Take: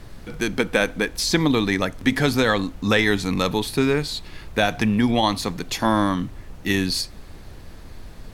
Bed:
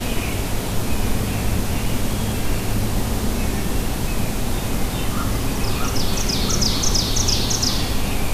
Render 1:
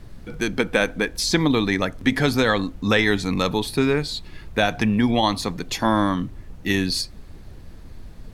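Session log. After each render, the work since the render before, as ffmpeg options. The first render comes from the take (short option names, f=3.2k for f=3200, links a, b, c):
-af "afftdn=nr=6:nf=-41"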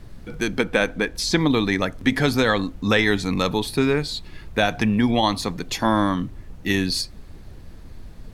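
-filter_complex "[0:a]asettb=1/sr,asplit=3[a][b][c];[a]atrim=end=0.644[d];[b]atrim=start=0.64:end=1.47,asetpts=PTS-STARTPTS,afade=t=in:d=0.004:c=qsin,afade=t=out:st=0.826:d=0.004:c=qsin,highshelf=f=7.6k:g=-5[e];[c]atrim=start=1.466[f];[d][e]acrossfade=d=0.004:c1=hsin:c2=qsin[g];[g][f]acrossfade=d=0.004:c1=qsin:c2=hsin"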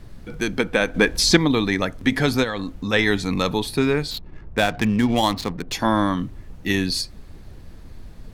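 -filter_complex "[0:a]asettb=1/sr,asplit=3[a][b][c];[a]atrim=end=0.944[d];[b]atrim=start=0.94:end=1.37,asetpts=PTS-STARTPTS,afade=t=in:d=0.004:c=qsin,afade=t=out:st=0.426:d=0.004:c=qsin,acontrast=72[e];[c]atrim=start=1.366[f];[d][e]acrossfade=d=0.004:c1=hsin:c2=qsin[g];[g][f]acrossfade=d=0.004:c1=qsin:c2=hsin,asplit=3[h][i][j];[h]afade=t=out:st=2.43:d=0.02[k];[i]acompressor=threshold=-22dB:ratio=6:attack=3.2:release=140:knee=1:detection=peak,afade=t=in:st=2.43:d=0.02,afade=t=out:st=2.92:d=0.02[l];[j]afade=t=in:st=2.92:d=0.02[m];[k][l][m]amix=inputs=3:normalize=0,asettb=1/sr,asplit=3[n][o][p];[n]atrim=end=4.114[q];[o]atrim=start=4.11:end=5.73,asetpts=PTS-STARTPTS,afade=t=in:d=0.004:c=qsin,afade=t=out:st=1.616:d=0.004:c=qsin,adynamicsmooth=sensitivity=6.5:basefreq=760[r];[p]atrim=start=5.726[s];[q][r]acrossfade=d=0.004:c1=hsin:c2=qsin[t];[t][s]acrossfade=d=0.004:c1=qsin:c2=hsin"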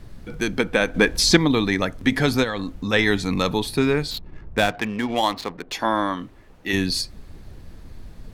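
-filter_complex "[0:a]asettb=1/sr,asplit=3[a][b][c];[a]atrim=end=4.714[d];[b]atrim=start=4.71:end=6.73,asetpts=PTS-STARTPTS,afade=t=in:d=0.004:c=qsin,afade=t=out:st=2.016:d=0.004:c=qsin,bass=f=250:g=-13,treble=f=4k:g=-5[e];[c]atrim=start=6.726[f];[d][e]acrossfade=d=0.004:c1=hsin:c2=qsin[g];[g][f]acrossfade=d=0.004:c1=qsin:c2=hsin"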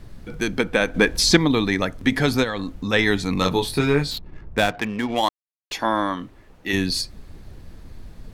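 -filter_complex "[0:a]asettb=1/sr,asplit=3[a][b][c];[a]atrim=end=3.394[d];[b]atrim=start=3.39:end=4.14,asetpts=PTS-STARTPTS,afade=t=in:d=0.004:c=qsin,afade=t=out:st=0.746:d=0.004:c=qsin,asplit=2[e][f];[f]adelay=21,volume=-4dB[g];[e][g]amix=inputs=2:normalize=0,atrim=end_sample=33075[h];[c]atrim=start=4.136[i];[d][h]acrossfade=d=0.004:c1=hsin:c2=qsin[j];[j][i]acrossfade=d=0.004:c1=qsin:c2=hsin,asplit=3[k][l][m];[k]atrim=end=5.29,asetpts=PTS-STARTPTS,afade=t=out:st=5.286:d=0.004:c=hsin[n];[l]atrim=start=5.29:end=5.71,asetpts=PTS-STARTPTS,volume=0[o];[m]atrim=start=5.71,asetpts=PTS-STARTPTS,afade=t=in:d=0.004:c=hsin[p];[n][o][p]concat=n=3:v=0:a=1"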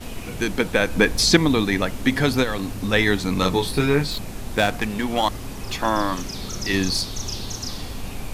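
-filter_complex "[1:a]volume=-11dB[a];[0:a][a]amix=inputs=2:normalize=0"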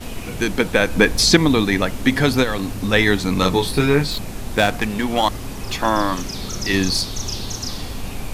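-af "volume=3dB,alimiter=limit=-1dB:level=0:latency=1"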